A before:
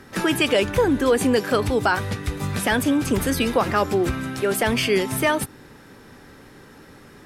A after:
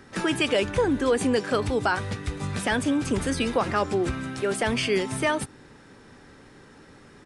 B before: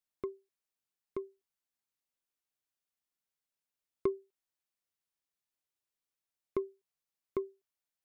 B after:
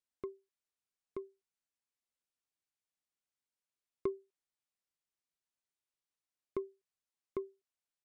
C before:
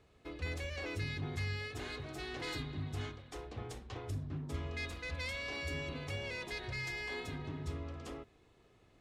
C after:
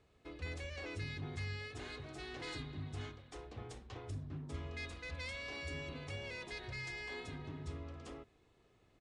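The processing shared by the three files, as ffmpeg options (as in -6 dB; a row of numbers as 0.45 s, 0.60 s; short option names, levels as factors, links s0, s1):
-af "aresample=22050,aresample=44100,volume=0.631"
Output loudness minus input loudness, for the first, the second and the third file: -4.0 LU, -4.0 LU, -4.0 LU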